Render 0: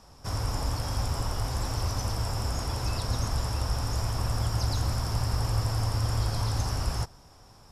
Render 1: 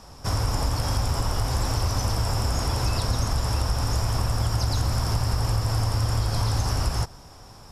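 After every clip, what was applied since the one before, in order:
downward compressor, threshold −27 dBFS, peak gain reduction 6 dB
level +7.5 dB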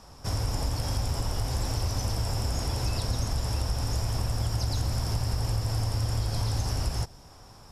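dynamic equaliser 1,200 Hz, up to −6 dB, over −50 dBFS, Q 1.6
level −4 dB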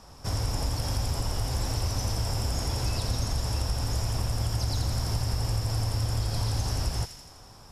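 delay with a high-pass on its return 83 ms, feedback 63%, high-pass 2,100 Hz, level −6.5 dB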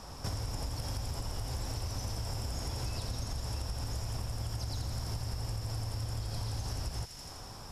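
downward compressor 5 to 1, threshold −38 dBFS, peak gain reduction 14 dB
level +3.5 dB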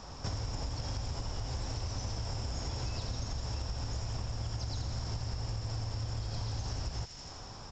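downsampling to 16,000 Hz

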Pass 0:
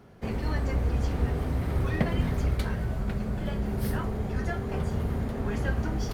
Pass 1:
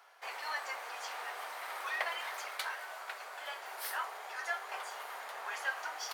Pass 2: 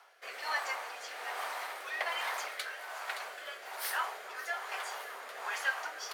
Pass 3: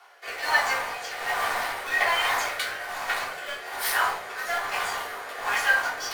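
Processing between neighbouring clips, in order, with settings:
inverse Chebyshev high-pass filter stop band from 180 Hz, stop band 70 dB; level +2 dB
echo with a time of its own for lows and highs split 1,600 Hz, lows 287 ms, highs 570 ms, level −13.5 dB; rotating-speaker cabinet horn 1.2 Hz; level +5 dB
in parallel at −9.5 dB: bit reduction 6 bits; on the sum: rectangular room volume 300 cubic metres, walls furnished, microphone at 3.4 metres; level +2.5 dB

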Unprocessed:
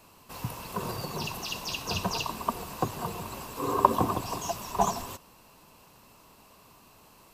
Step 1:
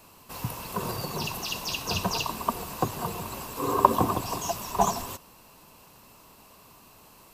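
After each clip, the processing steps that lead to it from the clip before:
high-shelf EQ 9,500 Hz +4.5 dB
level +2 dB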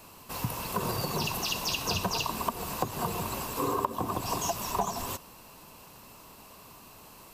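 downward compressor 12 to 1, threshold −28 dBFS, peak gain reduction 18 dB
level +2.5 dB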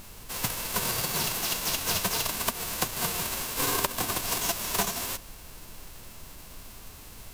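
spectral envelope flattened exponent 0.3
background noise brown −47 dBFS
level +2 dB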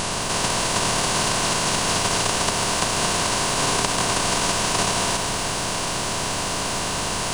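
compressor on every frequency bin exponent 0.2
downsampling to 22,050 Hz
feedback echo at a low word length 107 ms, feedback 80%, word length 6 bits, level −11 dB

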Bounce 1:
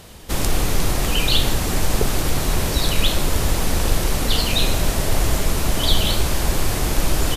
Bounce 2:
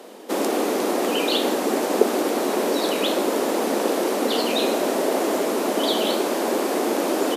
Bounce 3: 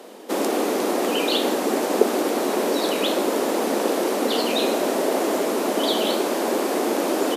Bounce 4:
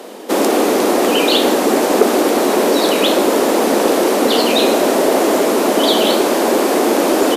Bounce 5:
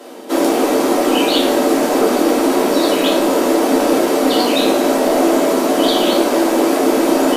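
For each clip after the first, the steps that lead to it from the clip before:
Butterworth high-pass 220 Hz 48 dB per octave; parametric band 440 Hz +14.5 dB 2.9 octaves; level −6.5 dB
floating-point word with a short mantissa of 8 bits
soft clipping −10 dBFS, distortion −21 dB; level +9 dB
rectangular room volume 170 cubic metres, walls furnished, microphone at 2.9 metres; level −7.5 dB

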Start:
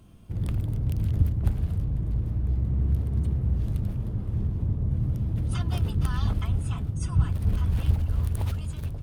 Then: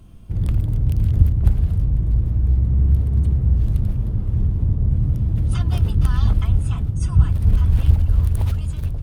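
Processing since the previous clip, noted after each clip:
low-shelf EQ 71 Hz +11.5 dB
level +3 dB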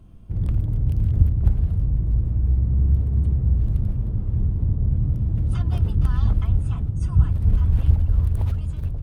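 high-shelf EQ 2,100 Hz −8.5 dB
level −2.5 dB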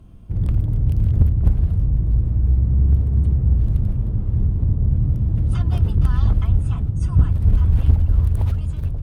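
asymmetric clip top −11.5 dBFS
level +3 dB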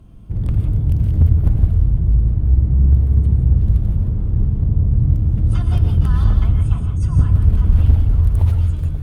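reverb whose tail is shaped and stops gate 200 ms rising, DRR 5 dB
level +1 dB

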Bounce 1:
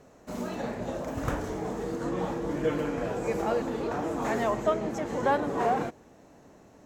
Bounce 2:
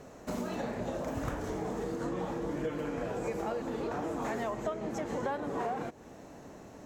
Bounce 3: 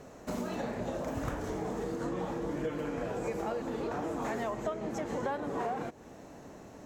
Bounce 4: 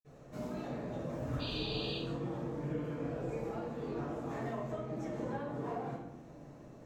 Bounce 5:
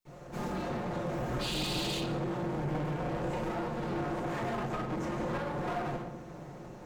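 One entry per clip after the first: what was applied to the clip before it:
downward compressor 5 to 1, threshold −38 dBFS, peak gain reduction 16 dB; level +5 dB
no processing that can be heard
sound drawn into the spectrogram noise, 0:01.34–0:01.92, 2,400–4,800 Hz −34 dBFS; convolution reverb RT60 0.90 s, pre-delay 47 ms; level −4.5 dB
lower of the sound and its delayed copy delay 5.6 ms; in parallel at −4 dB: wave folding −39 dBFS; on the sum: level +4 dB

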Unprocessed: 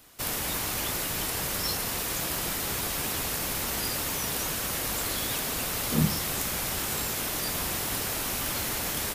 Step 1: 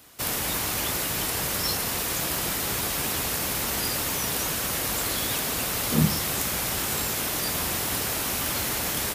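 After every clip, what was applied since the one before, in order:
high-pass filter 44 Hz
level +3 dB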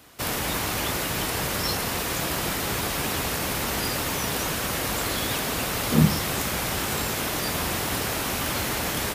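high-shelf EQ 4,700 Hz −7.5 dB
level +3.5 dB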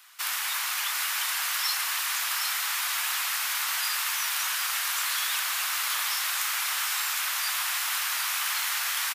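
inverse Chebyshev high-pass filter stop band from 320 Hz, stop band 60 dB
single-tap delay 760 ms −6 dB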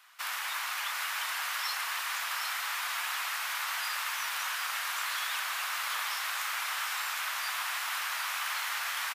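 high-shelf EQ 3,300 Hz −11 dB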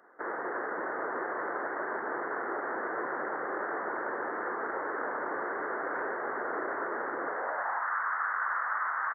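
voice inversion scrambler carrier 2,700 Hz
high-pass filter sweep 380 Hz → 1,200 Hz, 0:07.25–0:07.94

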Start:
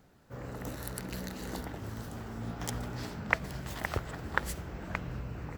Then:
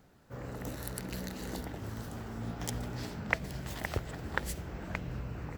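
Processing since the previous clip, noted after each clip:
dynamic equaliser 1,200 Hz, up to −6 dB, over −49 dBFS, Q 1.4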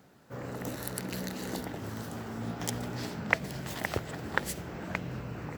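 high-pass filter 120 Hz 12 dB per octave
level +4 dB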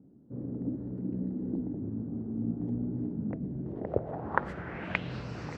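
low-pass filter sweep 280 Hz → 5,300 Hz, 0:03.57–0:05.29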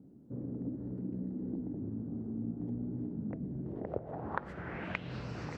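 downward compressor 2 to 1, threshold −40 dBFS, peak gain reduction 11 dB
level +1 dB

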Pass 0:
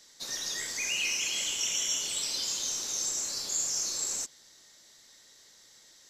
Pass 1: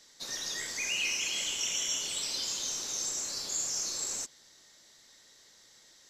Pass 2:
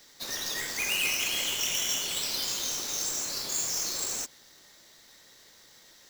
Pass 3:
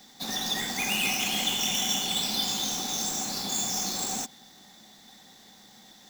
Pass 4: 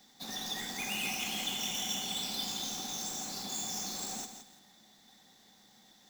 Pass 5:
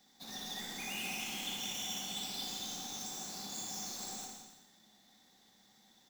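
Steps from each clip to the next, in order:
high-shelf EQ 6,100 Hz −4.5 dB
each half-wave held at its own peak
hollow resonant body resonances 210/760/3,500 Hz, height 18 dB, ringing for 55 ms
feedback echo at a low word length 167 ms, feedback 35%, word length 8 bits, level −8.5 dB; level −8.5 dB
reverse bouncing-ball delay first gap 60 ms, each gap 1.1×, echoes 5; level −6.5 dB

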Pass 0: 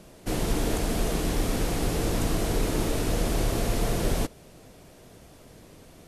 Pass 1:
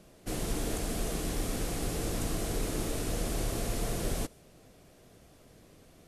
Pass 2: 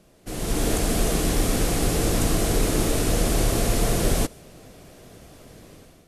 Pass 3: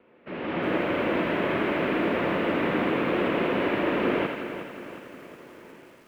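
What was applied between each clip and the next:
notch filter 920 Hz, Q 14; dynamic equaliser 9,100 Hz, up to +5 dB, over −50 dBFS, Q 0.79; level −7 dB
automatic gain control gain up to 11 dB
feedback echo with a high-pass in the loop 82 ms, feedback 62%, high-pass 580 Hz, level −5 dB; single-sideband voice off tune −130 Hz 380–2,800 Hz; feedback echo at a low word length 363 ms, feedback 55%, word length 9 bits, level −10.5 dB; level +3 dB

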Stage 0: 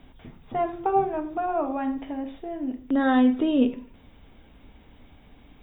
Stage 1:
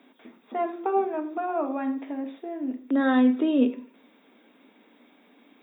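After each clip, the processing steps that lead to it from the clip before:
Butterworth high-pass 220 Hz 48 dB per octave
parametric band 790 Hz −4 dB 0.39 octaves
notch filter 3,000 Hz, Q 11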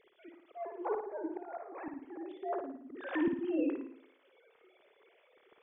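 three sine waves on the formant tracks
volume swells 624 ms
flutter between parallel walls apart 9.6 metres, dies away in 0.57 s
level −2.5 dB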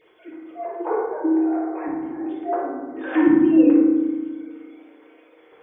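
convolution reverb RT60 1.4 s, pre-delay 3 ms, DRR −5.5 dB
level +5.5 dB

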